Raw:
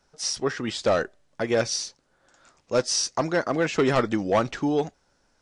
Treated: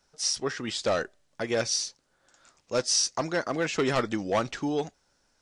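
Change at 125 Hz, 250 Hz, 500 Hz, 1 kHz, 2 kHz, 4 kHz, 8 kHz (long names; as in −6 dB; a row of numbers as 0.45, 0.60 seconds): −5.0, −5.0, −4.5, −4.0, −2.5, 0.0, +0.5 decibels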